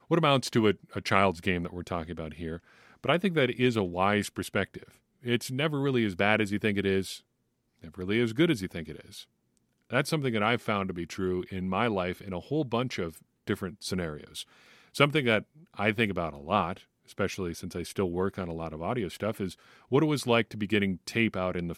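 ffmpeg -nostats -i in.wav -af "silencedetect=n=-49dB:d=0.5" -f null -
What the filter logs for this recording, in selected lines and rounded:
silence_start: 7.19
silence_end: 7.82 | silence_duration: 0.62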